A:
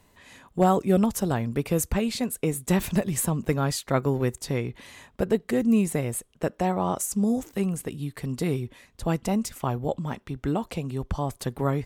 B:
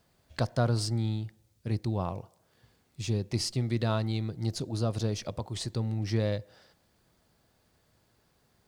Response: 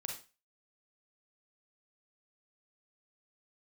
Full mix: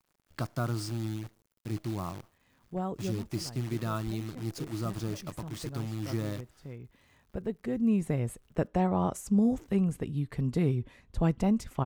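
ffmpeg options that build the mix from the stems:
-filter_complex "[0:a]lowpass=frequency=3100:poles=1,lowshelf=frequency=180:gain=9.5,adelay=2150,volume=-4.5dB[link_01];[1:a]equalizer=frequency=160:width_type=o:width=0.33:gain=6,equalizer=frequency=315:width_type=o:width=0.33:gain=9,equalizer=frequency=500:width_type=o:width=0.33:gain=-7,equalizer=frequency=1250:width_type=o:width=0.33:gain=10,equalizer=frequency=4000:width_type=o:width=0.33:gain=-5,acontrast=88,acrusher=bits=6:dc=4:mix=0:aa=0.000001,volume=-13dB,asplit=2[link_02][link_03];[link_03]apad=whole_len=617420[link_04];[link_01][link_04]sidechaincompress=threshold=-50dB:ratio=4:attack=6.1:release=1340[link_05];[link_05][link_02]amix=inputs=2:normalize=0"

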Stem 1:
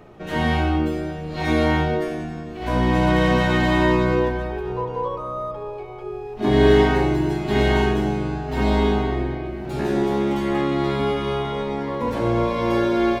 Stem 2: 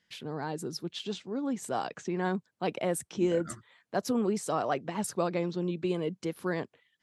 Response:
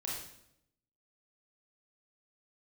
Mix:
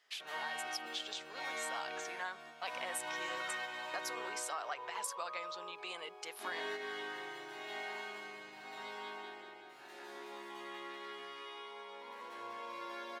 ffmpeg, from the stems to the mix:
-filter_complex "[0:a]volume=-13dB,asplit=3[link_01][link_02][link_03];[link_02]volume=-9dB[link_04];[link_03]volume=-6dB[link_05];[1:a]equalizer=frequency=260:width_type=o:width=1.6:gain=-13,volume=2dB,asplit=2[link_06][link_07];[link_07]apad=whole_len=582145[link_08];[link_01][link_08]sidechaingate=range=-33dB:threshold=-52dB:ratio=16:detection=peak[link_09];[2:a]atrim=start_sample=2205[link_10];[link_04][link_10]afir=irnorm=-1:irlink=0[link_11];[link_05]aecho=0:1:193|386|579|772|965|1158|1351|1544|1737:1|0.58|0.336|0.195|0.113|0.0656|0.0381|0.0221|0.0128[link_12];[link_09][link_06][link_11][link_12]amix=inputs=4:normalize=0,highpass=1000,acompressor=threshold=-38dB:ratio=3"

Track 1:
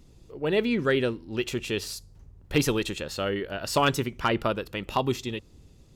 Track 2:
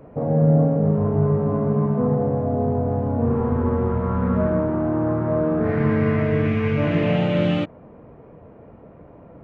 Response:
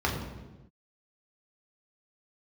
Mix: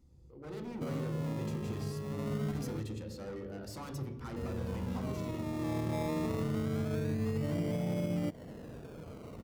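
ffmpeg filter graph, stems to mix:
-filter_complex "[0:a]equalizer=frequency=500:width_type=o:width=0.24:gain=7,asoftclip=type=hard:threshold=-28.5dB,highshelf=frequency=3500:gain=7,volume=-18.5dB,asplit=3[link_01][link_02][link_03];[link_02]volume=-12dB[link_04];[1:a]lowpass=1700,acompressor=threshold=-23dB:ratio=4,acrusher=samples=23:mix=1:aa=0.000001:lfo=1:lforange=13.8:lforate=0.24,adelay=650,volume=-5.5dB,asplit=3[link_05][link_06][link_07];[link_05]atrim=end=2.8,asetpts=PTS-STARTPTS,afade=type=out:start_time=2.796:duration=0.004:curve=hsin[link_08];[link_06]atrim=start=2.8:end=4.36,asetpts=PTS-STARTPTS,volume=0[link_09];[link_07]atrim=start=4.36,asetpts=PTS-STARTPTS,afade=type=in:duration=0.004:curve=hsin[link_10];[link_08][link_09][link_10]concat=n=3:v=0:a=1[link_11];[link_03]apad=whole_len=444679[link_12];[link_11][link_12]sidechaincompress=threshold=-59dB:ratio=6:attack=16:release=939[link_13];[2:a]atrim=start_sample=2205[link_14];[link_04][link_14]afir=irnorm=-1:irlink=0[link_15];[link_01][link_13][link_15]amix=inputs=3:normalize=0,tiltshelf=frequency=970:gain=5,alimiter=level_in=1.5dB:limit=-24dB:level=0:latency=1:release=165,volume=-1.5dB"

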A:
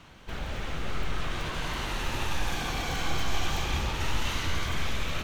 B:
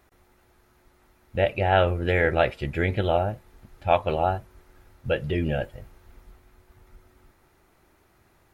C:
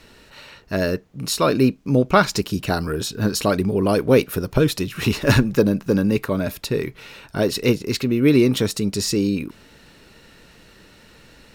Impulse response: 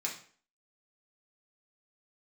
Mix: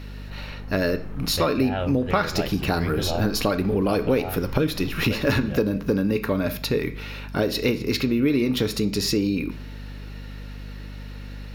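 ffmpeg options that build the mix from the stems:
-filter_complex "[0:a]adynamicsmooth=sensitivity=1.5:basefreq=1000,volume=-7.5dB[link_01];[1:a]bass=frequency=250:gain=4,treble=frequency=4000:gain=6,volume=-5dB[link_02];[2:a]equalizer=frequency=7900:width=2.3:gain=-14.5,volume=0.5dB,asplit=2[link_03][link_04];[link_04]volume=-7dB[link_05];[3:a]atrim=start_sample=2205[link_06];[link_05][link_06]afir=irnorm=-1:irlink=0[link_07];[link_01][link_02][link_03][link_07]amix=inputs=4:normalize=0,aeval=exprs='val(0)+0.0178*(sin(2*PI*50*n/s)+sin(2*PI*2*50*n/s)/2+sin(2*PI*3*50*n/s)/3+sin(2*PI*4*50*n/s)/4+sin(2*PI*5*50*n/s)/5)':channel_layout=same,acompressor=threshold=-19dB:ratio=4"

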